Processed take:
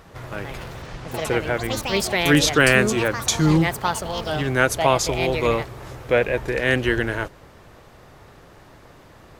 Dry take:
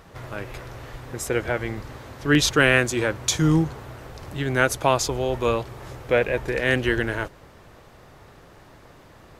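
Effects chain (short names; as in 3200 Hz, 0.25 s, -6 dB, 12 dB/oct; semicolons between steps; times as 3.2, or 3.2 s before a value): 0.82–1.25 CVSD 32 kbps; echoes that change speed 0.207 s, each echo +5 st, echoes 3, each echo -6 dB; gain +1.5 dB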